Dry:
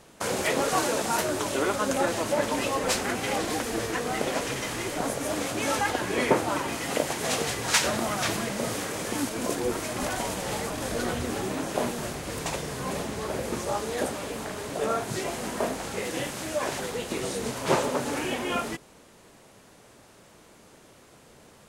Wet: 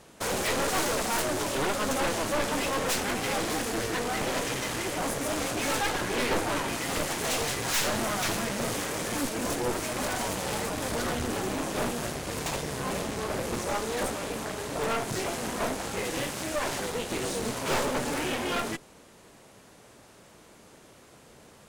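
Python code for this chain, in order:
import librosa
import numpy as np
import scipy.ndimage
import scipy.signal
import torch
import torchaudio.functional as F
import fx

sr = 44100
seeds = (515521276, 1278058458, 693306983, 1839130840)

y = fx.cheby_harmonics(x, sr, harmonics=(8,), levels_db=(-13,), full_scale_db=-6.0)
y = np.clip(10.0 ** (23.5 / 20.0) * y, -1.0, 1.0) / 10.0 ** (23.5 / 20.0)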